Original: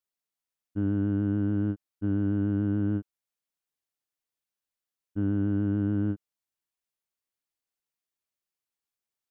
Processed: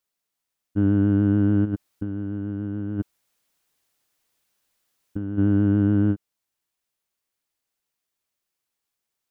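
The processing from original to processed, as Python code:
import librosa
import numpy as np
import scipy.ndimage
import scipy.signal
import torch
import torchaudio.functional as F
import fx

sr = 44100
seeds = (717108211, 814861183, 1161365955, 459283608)

y = fx.over_compress(x, sr, threshold_db=-36.0, ratio=-1.0, at=(1.64, 5.37), fade=0.02)
y = F.gain(torch.from_numpy(y), 7.5).numpy()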